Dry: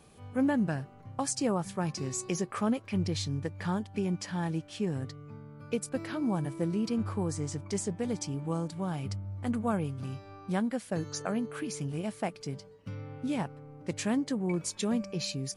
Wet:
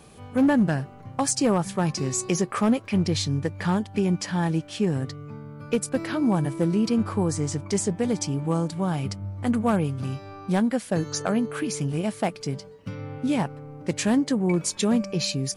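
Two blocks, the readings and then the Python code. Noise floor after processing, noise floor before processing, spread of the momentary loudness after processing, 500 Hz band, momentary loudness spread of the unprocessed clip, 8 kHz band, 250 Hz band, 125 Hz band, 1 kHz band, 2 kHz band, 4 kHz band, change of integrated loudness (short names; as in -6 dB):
-45 dBFS, -53 dBFS, 10 LU, +7.5 dB, 9 LU, +8.0 dB, +8.0 dB, +7.5 dB, +7.5 dB, +7.5 dB, +8.0 dB, +8.0 dB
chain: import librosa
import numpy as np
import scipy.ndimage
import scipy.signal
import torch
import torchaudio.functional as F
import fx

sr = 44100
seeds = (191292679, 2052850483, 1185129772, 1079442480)

y = np.clip(10.0 ** (22.5 / 20.0) * x, -1.0, 1.0) / 10.0 ** (22.5 / 20.0)
y = fx.hum_notches(y, sr, base_hz=50, count=2)
y = y * librosa.db_to_amplitude(8.0)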